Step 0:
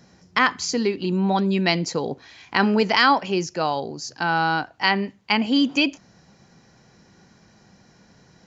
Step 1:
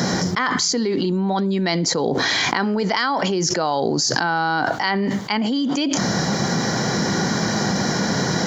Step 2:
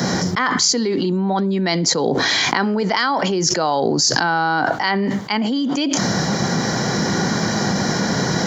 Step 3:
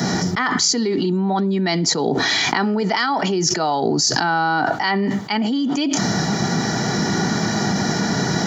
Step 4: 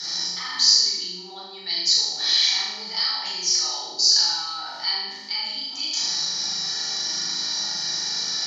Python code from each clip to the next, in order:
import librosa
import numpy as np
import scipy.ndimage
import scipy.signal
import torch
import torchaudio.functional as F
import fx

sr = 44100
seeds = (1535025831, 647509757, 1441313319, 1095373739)

y1 = scipy.signal.sosfilt(scipy.signal.butter(2, 140.0, 'highpass', fs=sr, output='sos'), x)
y1 = fx.peak_eq(y1, sr, hz=2600.0, db=-14.5, octaves=0.21)
y1 = fx.env_flatten(y1, sr, amount_pct=100)
y1 = F.gain(torch.from_numpy(y1), -5.5).numpy()
y2 = fx.band_widen(y1, sr, depth_pct=40)
y2 = F.gain(torch.from_numpy(y2), 2.0).numpy()
y3 = fx.notch_comb(y2, sr, f0_hz=530.0)
y4 = fx.bandpass_q(y3, sr, hz=4500.0, q=4.3)
y4 = fx.room_flutter(y4, sr, wall_m=6.6, rt60_s=0.89)
y4 = fx.room_shoebox(y4, sr, seeds[0], volume_m3=660.0, walls='furnished', distance_m=4.2)